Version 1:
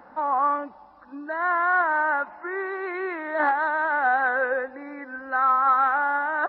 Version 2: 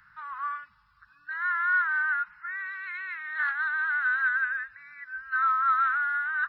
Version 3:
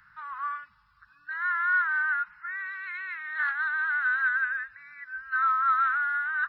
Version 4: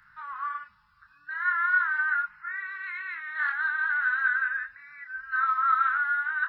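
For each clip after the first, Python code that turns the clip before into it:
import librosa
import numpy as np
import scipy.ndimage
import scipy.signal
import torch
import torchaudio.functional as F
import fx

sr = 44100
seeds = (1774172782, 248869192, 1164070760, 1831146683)

y1 = scipy.signal.sosfilt(scipy.signal.ellip(3, 1.0, 40, [140.0, 1400.0], 'bandstop', fs=sr, output='sos'), x)
y2 = y1
y3 = fx.chorus_voices(y2, sr, voices=4, hz=0.44, base_ms=27, depth_ms=3.9, mix_pct=35)
y3 = y3 * librosa.db_to_amplitude(3.0)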